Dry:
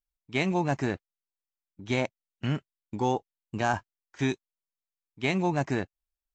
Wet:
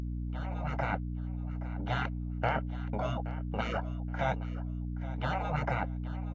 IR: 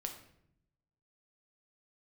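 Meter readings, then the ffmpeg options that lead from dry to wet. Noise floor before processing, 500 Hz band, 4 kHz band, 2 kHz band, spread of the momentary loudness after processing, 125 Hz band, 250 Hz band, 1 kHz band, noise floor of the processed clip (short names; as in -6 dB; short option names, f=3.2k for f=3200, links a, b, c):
under -85 dBFS, -6.0 dB, -6.5 dB, -4.0 dB, 6 LU, -0.5 dB, -7.0 dB, -2.0 dB, -37 dBFS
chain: -af "highpass=470,afftfilt=real='re*lt(hypot(re,im),0.0355)':imag='im*lt(hypot(re,im),0.0355)':win_size=1024:overlap=0.75,lowpass=1k,aecho=1:1:1.4:0.74,dynaudnorm=f=290:g=5:m=16.5dB,aeval=exprs='val(0)+0.02*(sin(2*PI*60*n/s)+sin(2*PI*2*60*n/s)/2+sin(2*PI*3*60*n/s)/3+sin(2*PI*4*60*n/s)/4+sin(2*PI*5*60*n/s)/5)':c=same,asoftclip=type=hard:threshold=-17.5dB,aecho=1:1:823|1646:0.158|0.0365" -ar 16000 -c:a libvorbis -b:a 64k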